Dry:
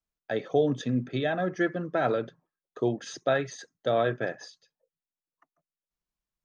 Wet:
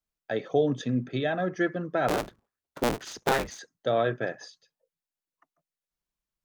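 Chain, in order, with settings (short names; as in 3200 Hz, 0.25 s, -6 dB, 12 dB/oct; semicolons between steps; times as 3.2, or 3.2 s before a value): 2.08–3.59 cycle switcher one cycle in 3, inverted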